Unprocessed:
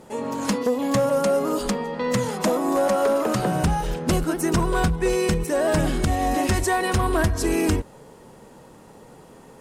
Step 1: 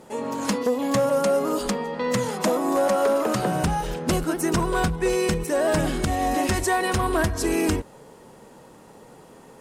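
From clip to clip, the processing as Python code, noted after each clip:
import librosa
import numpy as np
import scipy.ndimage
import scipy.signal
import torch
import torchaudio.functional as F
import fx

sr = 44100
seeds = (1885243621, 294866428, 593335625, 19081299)

y = fx.low_shelf(x, sr, hz=140.0, db=-5.5)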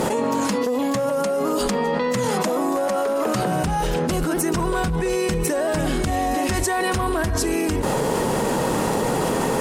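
y = fx.env_flatten(x, sr, amount_pct=100)
y = y * 10.0 ** (-3.0 / 20.0)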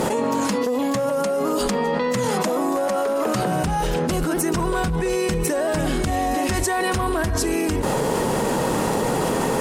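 y = x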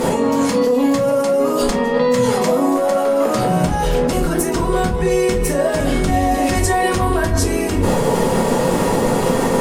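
y = fx.room_shoebox(x, sr, seeds[0], volume_m3=130.0, walls='furnished', distance_m=1.7)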